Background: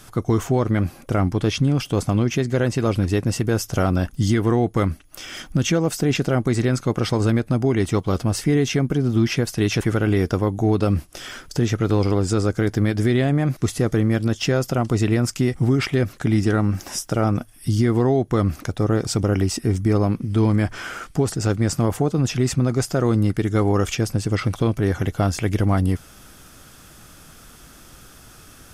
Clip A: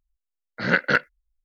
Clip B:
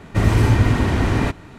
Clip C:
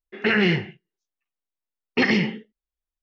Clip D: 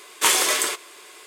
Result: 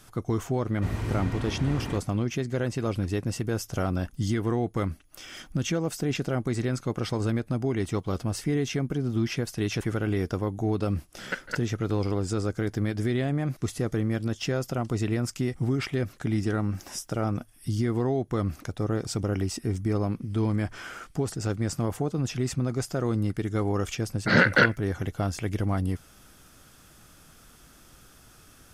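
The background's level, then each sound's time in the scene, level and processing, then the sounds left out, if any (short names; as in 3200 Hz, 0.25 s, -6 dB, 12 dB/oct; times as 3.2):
background -8 dB
0.67 add B -15 dB
10.59 add A -10 dB + level quantiser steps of 17 dB
23.68 add A -6.5 dB + maximiser +12.5 dB
not used: C, D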